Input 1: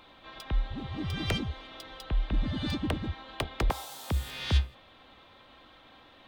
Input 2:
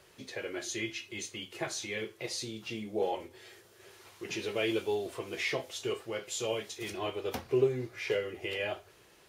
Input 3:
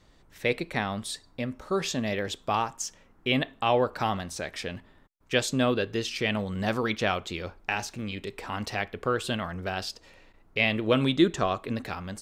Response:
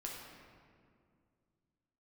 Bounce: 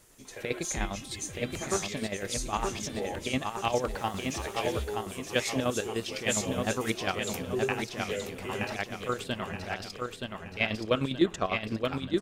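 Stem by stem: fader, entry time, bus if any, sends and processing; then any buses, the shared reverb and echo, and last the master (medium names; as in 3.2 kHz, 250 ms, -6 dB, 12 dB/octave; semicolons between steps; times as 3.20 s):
0.0 dB, 0.25 s, no send, no echo send, auto duck -12 dB, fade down 1.30 s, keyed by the third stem
-4.5 dB, 0.00 s, no send, echo send -9.5 dB, resonant high shelf 5.4 kHz +10 dB, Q 1.5
-2.5 dB, 0.00 s, no send, echo send -4 dB, square tremolo 9.9 Hz, depth 65%, duty 45%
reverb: none
echo: feedback delay 924 ms, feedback 44%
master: none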